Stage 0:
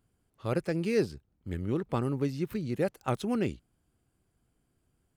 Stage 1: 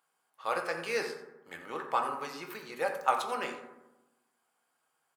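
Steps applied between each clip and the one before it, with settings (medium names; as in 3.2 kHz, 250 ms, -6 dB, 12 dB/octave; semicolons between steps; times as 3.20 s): resonant high-pass 910 Hz, resonance Q 1.8; delay 87 ms -14.5 dB; on a send at -2.5 dB: reverberation RT60 1.0 s, pre-delay 3 ms; on the sum: trim +2 dB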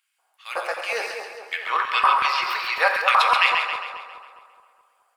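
time-frequency box 1.53–3.66 s, 930–5700 Hz +12 dB; LFO high-pass square 2.7 Hz 690–2400 Hz; two-band feedback delay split 1.2 kHz, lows 211 ms, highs 135 ms, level -5.5 dB; trim +4 dB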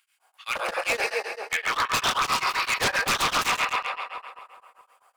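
in parallel at +2 dB: compression 6:1, threshold -27 dBFS, peak gain reduction 13.5 dB; on the sum: wavefolder -16.5 dBFS; tremolo of two beating tones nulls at 7.7 Hz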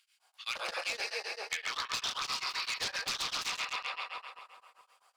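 peaking EQ 4.6 kHz +13 dB 1.5 oct; compression, threshold -24 dBFS, peak gain reduction 11 dB; trim -8.5 dB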